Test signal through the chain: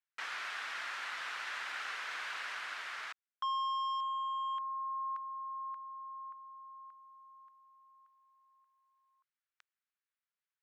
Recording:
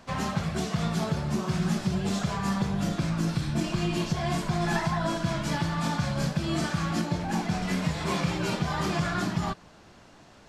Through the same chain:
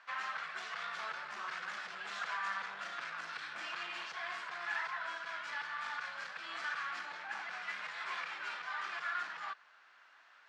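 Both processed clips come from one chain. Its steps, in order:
gain into a clipping stage and back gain 26 dB
four-pole ladder band-pass 1,800 Hz, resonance 40%
speech leveller within 4 dB 2 s
level +7 dB

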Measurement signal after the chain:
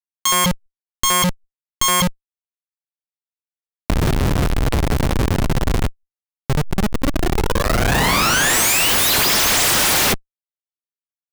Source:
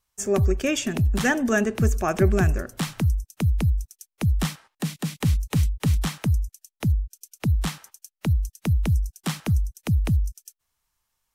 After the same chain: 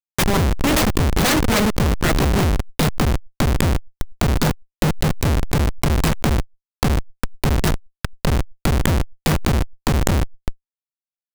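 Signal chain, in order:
phase distortion by the signal itself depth 0.98 ms
high-shelf EQ 4,200 Hz +9.5 dB
hum removal 115.7 Hz, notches 5
in parallel at +2 dB: downward compressor 16 to 1, threshold −28 dBFS
on the sum: soft clipping −6.5 dBFS
on a send: ambience of single reflections 14 ms −8.5 dB, 68 ms −7.5 dB
on the sum: comparator with hysteresis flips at −16 dBFS
background raised ahead of every attack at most 94 dB per second
level +4 dB

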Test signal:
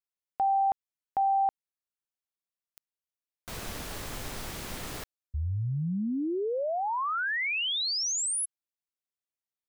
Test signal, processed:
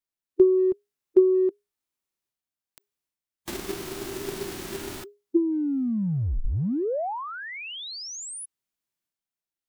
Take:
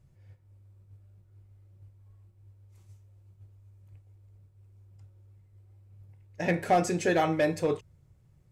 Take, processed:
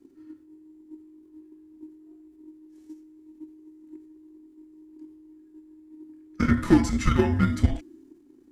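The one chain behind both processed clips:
frequency shifter −410 Hz
harmonic and percussive parts rebalanced percussive −11 dB
transient designer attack +10 dB, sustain +6 dB
level +4 dB

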